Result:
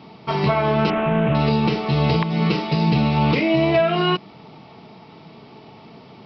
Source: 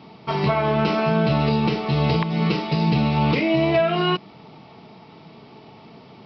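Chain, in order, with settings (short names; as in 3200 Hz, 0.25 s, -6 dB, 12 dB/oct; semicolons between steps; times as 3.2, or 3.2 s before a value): 0.9–1.35 CVSD 16 kbps; gain +1.5 dB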